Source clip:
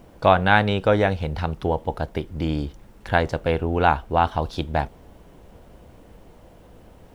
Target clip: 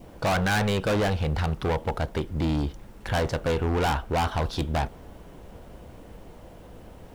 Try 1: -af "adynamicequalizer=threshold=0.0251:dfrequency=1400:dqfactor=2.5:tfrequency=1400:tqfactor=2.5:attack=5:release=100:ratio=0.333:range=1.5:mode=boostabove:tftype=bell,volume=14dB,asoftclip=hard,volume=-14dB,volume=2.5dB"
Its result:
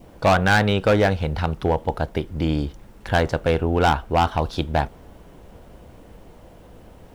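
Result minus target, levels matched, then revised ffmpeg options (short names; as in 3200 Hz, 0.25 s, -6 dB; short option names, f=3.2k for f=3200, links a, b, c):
overloaded stage: distortion -6 dB
-af "adynamicequalizer=threshold=0.0251:dfrequency=1400:dqfactor=2.5:tfrequency=1400:tqfactor=2.5:attack=5:release=100:ratio=0.333:range=1.5:mode=boostabove:tftype=bell,volume=24dB,asoftclip=hard,volume=-24dB,volume=2.5dB"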